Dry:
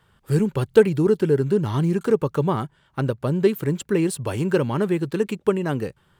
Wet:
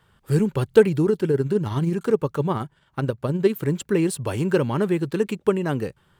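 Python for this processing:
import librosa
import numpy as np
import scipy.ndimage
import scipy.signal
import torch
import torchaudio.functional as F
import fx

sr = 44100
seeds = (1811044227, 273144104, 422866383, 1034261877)

y = fx.tremolo(x, sr, hz=19.0, depth=0.4, at=(1.04, 3.62))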